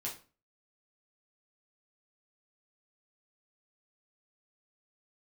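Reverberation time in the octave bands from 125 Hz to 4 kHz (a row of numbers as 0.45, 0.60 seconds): 0.45, 0.45, 0.35, 0.35, 0.35, 0.30 seconds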